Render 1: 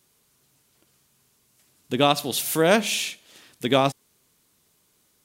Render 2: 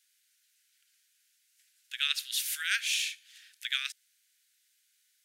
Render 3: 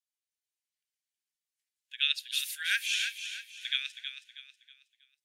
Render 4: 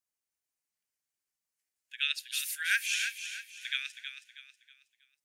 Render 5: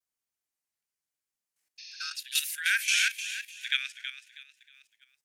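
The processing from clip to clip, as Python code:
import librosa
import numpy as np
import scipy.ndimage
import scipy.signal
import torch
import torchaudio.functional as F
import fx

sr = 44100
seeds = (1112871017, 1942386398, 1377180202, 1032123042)

y1 = scipy.signal.sosfilt(scipy.signal.butter(12, 1500.0, 'highpass', fs=sr, output='sos'), x)
y1 = fx.high_shelf(y1, sr, hz=9500.0, db=-6.0)
y1 = F.gain(torch.from_numpy(y1), -3.0).numpy()
y2 = scipy.signal.sosfilt(scipy.signal.butter(4, 1300.0, 'highpass', fs=sr, output='sos'), y1)
y2 = fx.echo_feedback(y2, sr, ms=320, feedback_pct=51, wet_db=-6.0)
y2 = fx.spectral_expand(y2, sr, expansion=1.5)
y3 = fx.peak_eq(y2, sr, hz=3500.0, db=-8.0, octaves=0.71)
y3 = F.gain(torch.from_numpy(y3), 3.0).numpy()
y4 = fx.spec_repair(y3, sr, seeds[0], start_s=1.82, length_s=0.29, low_hz=1700.0, high_hz=6700.0, source='after')
y4 = fx.level_steps(y4, sr, step_db=11)
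y4 = fx.vibrato(y4, sr, rate_hz=0.94, depth_cents=45.0)
y4 = F.gain(torch.from_numpy(y4), 8.5).numpy()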